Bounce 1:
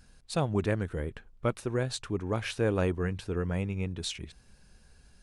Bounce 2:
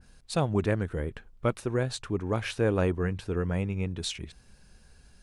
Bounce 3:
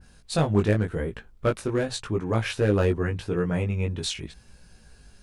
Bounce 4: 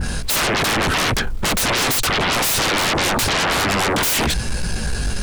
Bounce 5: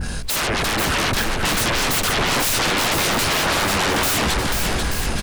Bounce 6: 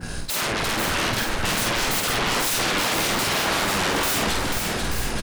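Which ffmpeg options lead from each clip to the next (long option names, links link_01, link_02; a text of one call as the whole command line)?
ffmpeg -i in.wav -af "adynamicequalizer=threshold=0.00501:dfrequency=2400:dqfactor=0.7:tfrequency=2400:tqfactor=0.7:attack=5:release=100:ratio=0.375:range=2:mode=cutabove:tftype=highshelf,volume=2dB" out.wav
ffmpeg -i in.wav -af "asoftclip=type=hard:threshold=-18.5dB,flanger=delay=17.5:depth=2.2:speed=0.88,volume=7dB" out.wav
ffmpeg -i in.wav -af "alimiter=limit=-23dB:level=0:latency=1:release=64,aeval=exprs='0.0708*sin(PI/2*10*val(0)/0.0708)':channel_layout=same,volume=7.5dB" out.wav
ffmpeg -i in.wav -af "aecho=1:1:490|882|1196|1446|1647:0.631|0.398|0.251|0.158|0.1,volume=-3dB" out.wav
ffmpeg -i in.wav -filter_complex "[0:a]acrossover=split=110[link_01][link_02];[link_01]acrusher=bits=3:dc=4:mix=0:aa=0.000001[link_03];[link_03][link_02]amix=inputs=2:normalize=0,asplit=2[link_04][link_05];[link_05]adelay=50,volume=-4dB[link_06];[link_04][link_06]amix=inputs=2:normalize=0,volume=-4.5dB" out.wav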